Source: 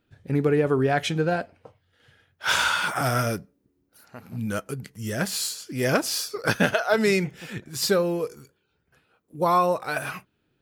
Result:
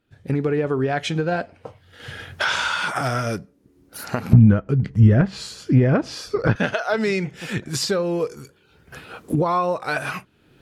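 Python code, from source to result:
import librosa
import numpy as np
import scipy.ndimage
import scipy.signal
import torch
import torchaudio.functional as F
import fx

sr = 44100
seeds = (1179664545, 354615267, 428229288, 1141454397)

y = fx.recorder_agc(x, sr, target_db=-12.5, rise_db_per_s=26.0, max_gain_db=30)
y = fx.riaa(y, sr, side='playback', at=(4.33, 6.56))
y = fx.env_lowpass_down(y, sr, base_hz=2400.0, full_db=-11.0)
y = F.gain(torch.from_numpy(y), -1.0).numpy()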